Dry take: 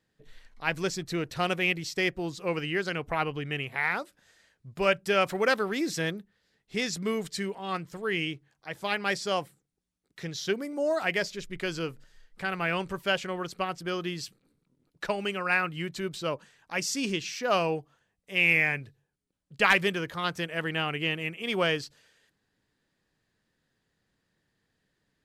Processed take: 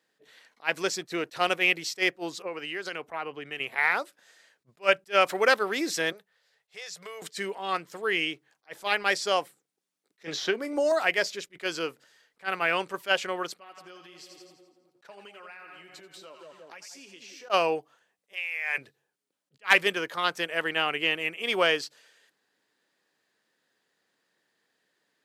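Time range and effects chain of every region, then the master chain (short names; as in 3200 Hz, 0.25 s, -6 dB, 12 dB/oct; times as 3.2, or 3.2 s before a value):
2.42–3.6 compressor 12:1, threshold -31 dBFS + three-band expander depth 100%
6.12–7.22 Chebyshev band-stop 140–520 Hz + compressor 8:1, threshold -40 dBFS
10.24–10.92 high shelf 6100 Hz -9.5 dB + doubler 27 ms -13.5 dB + three-band squash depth 100%
13.54–17.5 split-band echo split 830 Hz, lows 0.178 s, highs 84 ms, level -10 dB + compressor 10:1, threshold -42 dBFS + flange 1 Hz, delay 0.8 ms, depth 6.4 ms, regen -47%
18.33–18.78 negative-ratio compressor -34 dBFS + Bessel high-pass 770 Hz, order 4
whole clip: HPF 390 Hz 12 dB/oct; attack slew limiter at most 420 dB/s; gain +4 dB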